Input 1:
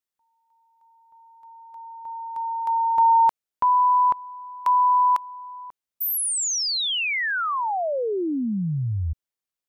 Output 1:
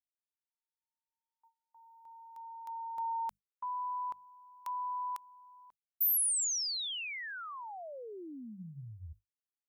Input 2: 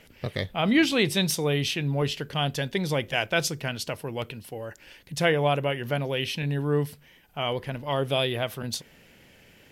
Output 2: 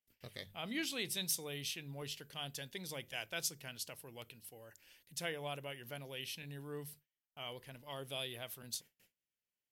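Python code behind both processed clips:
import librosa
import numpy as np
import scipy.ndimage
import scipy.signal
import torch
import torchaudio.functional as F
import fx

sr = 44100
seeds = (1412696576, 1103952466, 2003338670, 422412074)

y = scipy.signal.lfilter([1.0, -0.8], [1.0], x)
y = fx.hum_notches(y, sr, base_hz=50, count=4)
y = fx.gate_hold(y, sr, open_db=-51.0, close_db=-55.0, hold_ms=24.0, range_db=-28, attack_ms=3.2, release_ms=91.0)
y = F.gain(torch.from_numpy(y), -6.5).numpy()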